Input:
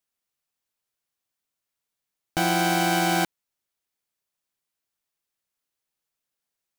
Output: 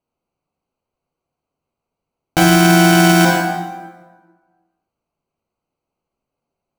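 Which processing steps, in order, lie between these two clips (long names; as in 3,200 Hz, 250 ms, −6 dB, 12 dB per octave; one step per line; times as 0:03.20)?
adaptive Wiener filter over 25 samples
dense smooth reverb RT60 1.4 s, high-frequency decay 0.65×, DRR 1.5 dB
boost into a limiter +15.5 dB
level −1 dB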